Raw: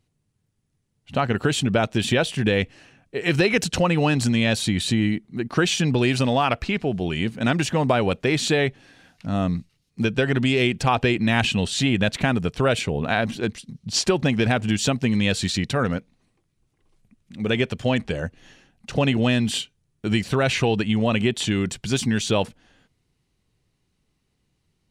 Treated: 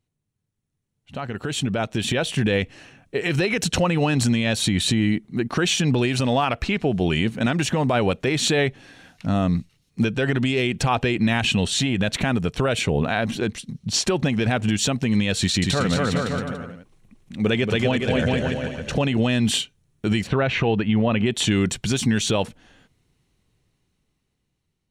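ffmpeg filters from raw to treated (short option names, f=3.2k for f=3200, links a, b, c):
-filter_complex "[0:a]asettb=1/sr,asplit=3[a][b][c];[a]atrim=end=11.704[d];[b]atrim=start=11.7:end=12.23,asetpts=PTS-STARTPTS,afade=t=in:d=0.004:c=qsin,afade=t=out:st=0.526:d=0.004:c=qsin,acompressor=threshold=-23dB:ratio=3:attack=3.2:release=140:knee=1:detection=peak[e];[c]atrim=start=12.226[f];[d][e]acrossfade=d=0.004:c1=hsin:c2=qsin[g];[g][f]acrossfade=d=0.004:c1=qsin:c2=hsin,asettb=1/sr,asplit=3[h][i][j];[h]atrim=end=15.394[k];[i]atrim=start=15.39:end=18.98,asetpts=PTS-STARTPTS,afade=t=in:d=0.004:c=qsin,afade=t=out:st=3.586:d=0.004:c=qsin,aecho=1:1:230|414|561.2|679|773.2|848.5:0.631|0.398|0.251|0.158|0.1|0.0631,atrim=end_sample=158319[l];[j]atrim=start=18.976[m];[k][l]acrossfade=d=0.004:c1=hsin:c2=qsin[n];[n][m]acrossfade=d=0.004:c1=qsin:c2=hsin,asplit=3[o][p][q];[o]afade=t=out:st=20.26:d=0.02[r];[p]lowpass=2.7k,afade=t=in:st=20.26:d=0.02,afade=t=out:st=21.25:d=0.02[s];[q]afade=t=in:st=21.25:d=0.02[t];[r][s][t]amix=inputs=3:normalize=0,bandreject=f=4.8k:w=15,alimiter=limit=-15.5dB:level=0:latency=1:release=123,dynaudnorm=f=370:g=9:m=13.5dB,volume=-7.5dB"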